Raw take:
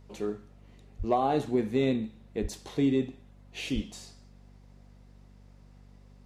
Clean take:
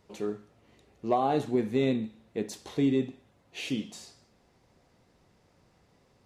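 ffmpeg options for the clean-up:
-filter_complex "[0:a]bandreject=f=48.7:t=h:w=4,bandreject=f=97.4:t=h:w=4,bandreject=f=146.1:t=h:w=4,bandreject=f=194.8:t=h:w=4,bandreject=f=243.5:t=h:w=4,asplit=3[s0][s1][s2];[s0]afade=t=out:st=0.98:d=0.02[s3];[s1]highpass=f=140:w=0.5412,highpass=f=140:w=1.3066,afade=t=in:st=0.98:d=0.02,afade=t=out:st=1.1:d=0.02[s4];[s2]afade=t=in:st=1.1:d=0.02[s5];[s3][s4][s5]amix=inputs=3:normalize=0,asplit=3[s6][s7][s8];[s6]afade=t=out:st=2.41:d=0.02[s9];[s7]highpass=f=140:w=0.5412,highpass=f=140:w=1.3066,afade=t=in:st=2.41:d=0.02,afade=t=out:st=2.53:d=0.02[s10];[s8]afade=t=in:st=2.53:d=0.02[s11];[s9][s10][s11]amix=inputs=3:normalize=0,asplit=3[s12][s13][s14];[s12]afade=t=out:st=3.74:d=0.02[s15];[s13]highpass=f=140:w=0.5412,highpass=f=140:w=1.3066,afade=t=in:st=3.74:d=0.02,afade=t=out:st=3.86:d=0.02[s16];[s14]afade=t=in:st=3.86:d=0.02[s17];[s15][s16][s17]amix=inputs=3:normalize=0"

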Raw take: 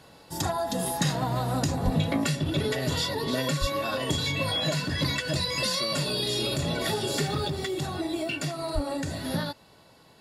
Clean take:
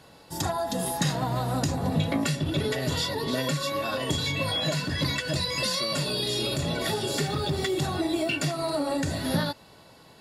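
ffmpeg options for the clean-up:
-filter_complex "[0:a]asplit=3[s0][s1][s2];[s0]afade=t=out:st=1.84:d=0.02[s3];[s1]highpass=f=140:w=0.5412,highpass=f=140:w=1.3066,afade=t=in:st=1.84:d=0.02,afade=t=out:st=1.96:d=0.02[s4];[s2]afade=t=in:st=1.96:d=0.02[s5];[s3][s4][s5]amix=inputs=3:normalize=0,asplit=3[s6][s7][s8];[s6]afade=t=out:st=3.6:d=0.02[s9];[s7]highpass=f=140:w=0.5412,highpass=f=140:w=1.3066,afade=t=in:st=3.6:d=0.02,afade=t=out:st=3.72:d=0.02[s10];[s8]afade=t=in:st=3.72:d=0.02[s11];[s9][s10][s11]amix=inputs=3:normalize=0,asplit=3[s12][s13][s14];[s12]afade=t=out:st=8.74:d=0.02[s15];[s13]highpass=f=140:w=0.5412,highpass=f=140:w=1.3066,afade=t=in:st=8.74:d=0.02,afade=t=out:st=8.86:d=0.02[s16];[s14]afade=t=in:st=8.86:d=0.02[s17];[s15][s16][s17]amix=inputs=3:normalize=0,asetnsamples=n=441:p=0,asendcmd='7.48 volume volume 3.5dB',volume=1"

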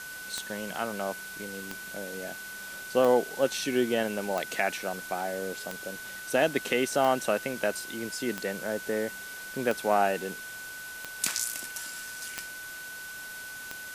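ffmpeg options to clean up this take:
-af "adeclick=t=4,bandreject=f=1500:w=30,afwtdn=0.0063"

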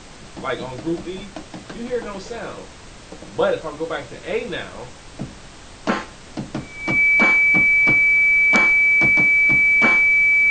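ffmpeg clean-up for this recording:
-af "bandreject=f=2300:w=30,afftdn=nr=24:nf=-41"

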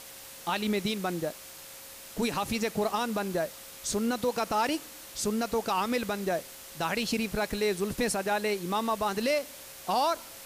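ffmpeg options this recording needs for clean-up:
-af "bandreject=f=540:w=30,afwtdn=0.0056"

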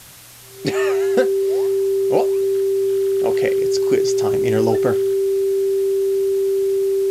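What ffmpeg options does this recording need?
-af "bandreject=f=390:w=30,afwtdn=0.0089"

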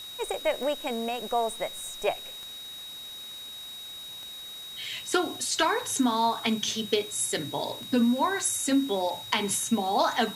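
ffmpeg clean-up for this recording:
-af "adeclick=t=4,bandreject=f=3800:w=30,afwtdn=0.004"

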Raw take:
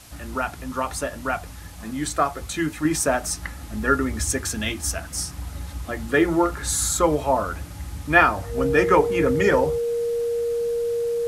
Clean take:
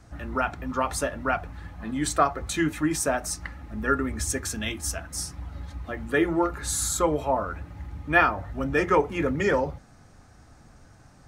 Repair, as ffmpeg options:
-af "bandreject=f=470:w=30,afwtdn=0.005,asetnsamples=n=441:p=0,asendcmd='2.85 volume volume -4dB',volume=1"

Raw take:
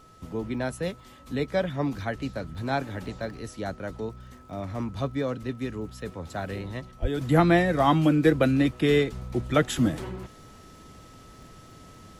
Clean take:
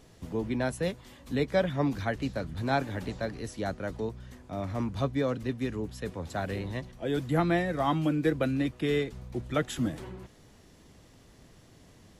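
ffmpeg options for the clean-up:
-filter_complex "[0:a]adeclick=t=4,bandreject=f=1300:w=30,asplit=3[s0][s1][s2];[s0]afade=t=out:st=7.01:d=0.02[s3];[s1]highpass=f=140:w=0.5412,highpass=f=140:w=1.3066,afade=t=in:st=7.01:d=0.02,afade=t=out:st=7.13:d=0.02[s4];[s2]afade=t=in:st=7.13:d=0.02[s5];[s3][s4][s5]amix=inputs=3:normalize=0,asetnsamples=n=441:p=0,asendcmd='7.21 volume volume -6.5dB',volume=1"

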